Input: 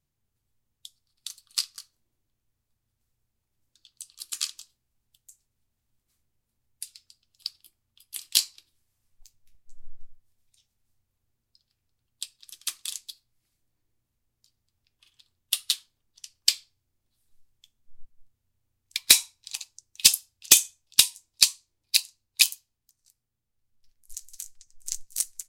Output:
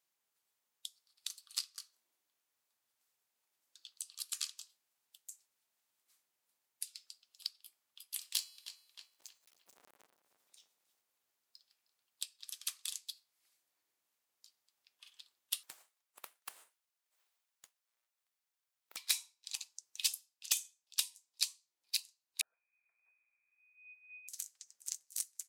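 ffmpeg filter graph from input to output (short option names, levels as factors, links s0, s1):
-filter_complex "[0:a]asettb=1/sr,asplit=3[s0][s1][s2];[s0]atrim=end=8.204[s3];[s1]atrim=start=8.2:end=12.23,asetpts=PTS-STARTPTS,afade=t=in:d=0.004:c=qsin,afade=t=out:st=4.026:d=0.004:c=qsin,bandreject=f=370.3:t=h:w=4,bandreject=f=740.6:t=h:w=4,bandreject=f=1110.9:t=h:w=4,bandreject=f=1481.2:t=h:w=4,bandreject=f=1851.5:t=h:w=4,bandreject=f=2221.8:t=h:w=4,bandreject=f=2592.1:t=h:w=4,bandreject=f=2962.4:t=h:w=4,bandreject=f=3332.7:t=h:w=4,bandreject=f=3703:t=h:w=4,bandreject=f=4073.3:t=h:w=4,bandreject=f=4443.6:t=h:w=4,bandreject=f=4813.9:t=h:w=4,bandreject=f=5184.2:t=h:w=4,bandreject=f=5554.5:t=h:w=4,bandreject=f=5924.8:t=h:w=4,bandreject=f=6295.1:t=h:w=4,bandreject=f=6665.4:t=h:w=4,bandreject=f=7035.7:t=h:w=4,bandreject=f=7406:t=h:w=4,bandreject=f=7776.3:t=h:w=4,bandreject=f=8146.6:t=h:w=4,bandreject=f=8516.9:t=h:w=4,bandreject=f=8887.2:t=h:w=4,bandreject=f=9257.5:t=h:w=4,bandreject=f=9627.8:t=h:w=4,bandreject=f=9998.1:t=h:w=4,bandreject=f=10368.4:t=h:w=4,bandreject=f=10738.7:t=h:w=4,bandreject=f=11109:t=h:w=4,bandreject=f=11479.3:t=h:w=4,bandreject=f=11849.6:t=h:w=4,bandreject=f=12219.9:t=h:w=4,bandreject=f=12590.2:t=h:w=4,acrusher=bits=4:mode=log:mix=0:aa=0.000001,asplit=2[s4][s5];[s5]adelay=311,lowpass=f=3000:p=1,volume=0.126,asplit=2[s6][s7];[s7]adelay=311,lowpass=f=3000:p=1,volume=0.46,asplit=2[s8][s9];[s9]adelay=311,lowpass=f=3000:p=1,volume=0.46,asplit=2[s10][s11];[s11]adelay=311,lowpass=f=3000:p=1,volume=0.46[s12];[s4][s6][s8][s10][s12]amix=inputs=5:normalize=0,atrim=end_sample=177723[s13];[s2]atrim=start=12.226[s14];[s3][s13]acrossfade=d=0.004:c1=hsin:c2=qsin[s15];[s15][s14]acrossfade=d=0.004:c1=qsin:c2=hsin,asettb=1/sr,asplit=3[s16][s17][s18];[s16]atrim=end=15.634[s19];[s17]atrim=start=15.63:end=18.97,asetpts=PTS-STARTPTS,afade=t=in:d=0.004:c=qsin,afade=t=out:st=3.336:d=0.004:c=qsin,highpass=480,acompressor=threshold=0.0178:ratio=8:attack=3.2:release=140:knee=1:detection=peak,aeval=exprs='abs(val(0))':c=same[s20];[s18]atrim=start=18.966[s21];[s19][s20]acrossfade=d=0.004:c1=hsin:c2=qsin[s22];[s22][s21]acrossfade=d=0.004:c1=qsin:c2=hsin,asettb=1/sr,asplit=3[s23][s24][s25];[s23]atrim=end=22.414[s26];[s24]atrim=start=22.41:end=24.28,asetpts=PTS-STARTPTS,afade=t=in:d=0.004:c=qsin,afade=t=out:st=1.866:d=0.004:c=qsin,lowpass=f=2100:t=q:w=0.5098,lowpass=f=2100:t=q:w=0.6013,lowpass=f=2100:t=q:w=0.9,lowpass=f=2100:t=q:w=2.563,afreqshift=-2500,acompressor=threshold=0.00178:ratio=5:attack=3.2:release=140:knee=1:detection=peak[s27];[s25]atrim=start=24.276[s28];[s26][s27]acrossfade=d=0.004:c1=hsin:c2=qsin[s29];[s29][s28]acrossfade=d=0.004:c1=qsin:c2=hsin,acompressor=threshold=0.00708:ratio=2.5,highpass=680,volume=1.26"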